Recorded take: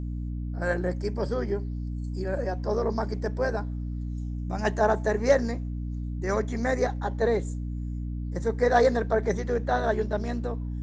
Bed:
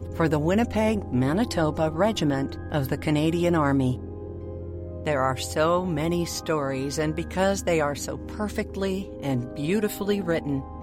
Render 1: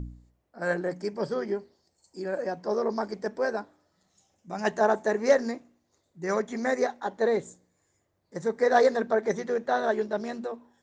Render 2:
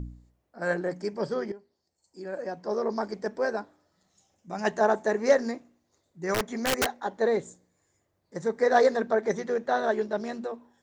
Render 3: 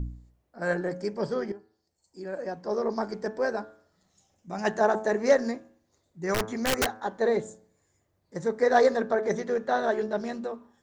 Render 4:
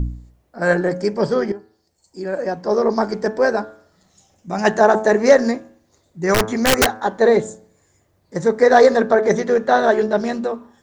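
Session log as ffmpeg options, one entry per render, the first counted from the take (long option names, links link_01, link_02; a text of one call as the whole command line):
ffmpeg -i in.wav -af "bandreject=frequency=60:width_type=h:width=4,bandreject=frequency=120:width_type=h:width=4,bandreject=frequency=180:width_type=h:width=4,bandreject=frequency=240:width_type=h:width=4,bandreject=frequency=300:width_type=h:width=4" out.wav
ffmpeg -i in.wav -filter_complex "[0:a]asettb=1/sr,asplit=3[link_01][link_02][link_03];[link_01]atrim=end=6.344[link_04];[link_02]atrim=start=6.34:end=6.95,asetpts=PTS-STARTPTS,afade=type=in:duration=0.004:curve=qsin,afade=type=out:start_time=0.606:duration=0.004:curve=qsin,aeval=exprs='(mod(8.91*val(0)+1,2)-1)/8.91':channel_layout=same[link_05];[link_03]atrim=start=6.946[link_06];[link_04][link_05]acrossfade=duration=0.004:curve1=hsin:curve2=qsin[link_07];[link_07][link_06]acrossfade=duration=0.004:curve1=qsin:curve2=hsin,asplit=2[link_08][link_09];[link_08]atrim=end=1.52,asetpts=PTS-STARTPTS,afade=type=out:start_time=1.516:duration=0.004:curve=hsin:silence=0.16788[link_10];[link_09]atrim=start=1.52,asetpts=PTS-STARTPTS,afade=type=in:duration=1.51:silence=0.16788[link_11];[link_10][link_11]concat=n=2:v=0:a=1" out.wav
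ffmpeg -i in.wav -af "lowshelf=frequency=130:gain=6,bandreject=frequency=108.7:width_type=h:width=4,bandreject=frequency=217.4:width_type=h:width=4,bandreject=frequency=326.1:width_type=h:width=4,bandreject=frequency=434.8:width_type=h:width=4,bandreject=frequency=543.5:width_type=h:width=4,bandreject=frequency=652.2:width_type=h:width=4,bandreject=frequency=760.9:width_type=h:width=4,bandreject=frequency=869.6:width_type=h:width=4,bandreject=frequency=978.3:width_type=h:width=4,bandreject=frequency=1087:width_type=h:width=4,bandreject=frequency=1195.7:width_type=h:width=4,bandreject=frequency=1304.4:width_type=h:width=4,bandreject=frequency=1413.1:width_type=h:width=4,bandreject=frequency=1521.8:width_type=h:width=4,bandreject=frequency=1630.5:width_type=h:width=4,bandreject=frequency=1739.2:width_type=h:width=4" out.wav
ffmpeg -i in.wav -af "volume=11dB,alimiter=limit=-2dB:level=0:latency=1" out.wav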